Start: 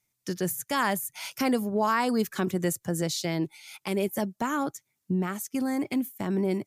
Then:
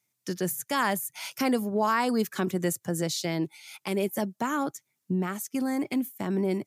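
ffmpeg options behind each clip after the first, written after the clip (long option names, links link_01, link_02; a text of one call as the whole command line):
ffmpeg -i in.wav -af "highpass=120" out.wav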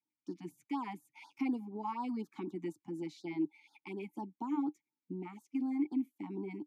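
ffmpeg -i in.wav -filter_complex "[0:a]asplit=3[link_01][link_02][link_03];[link_01]bandpass=frequency=300:width_type=q:width=8,volume=0dB[link_04];[link_02]bandpass=frequency=870:width_type=q:width=8,volume=-6dB[link_05];[link_03]bandpass=frequency=2240:width_type=q:width=8,volume=-9dB[link_06];[link_04][link_05][link_06]amix=inputs=3:normalize=0,afftfilt=real='re*(1-between(b*sr/1024,410*pow(2600/410,0.5+0.5*sin(2*PI*4.1*pts/sr))/1.41,410*pow(2600/410,0.5+0.5*sin(2*PI*4.1*pts/sr))*1.41))':imag='im*(1-between(b*sr/1024,410*pow(2600/410,0.5+0.5*sin(2*PI*4.1*pts/sr))/1.41,410*pow(2600/410,0.5+0.5*sin(2*PI*4.1*pts/sr))*1.41))':win_size=1024:overlap=0.75,volume=1dB" out.wav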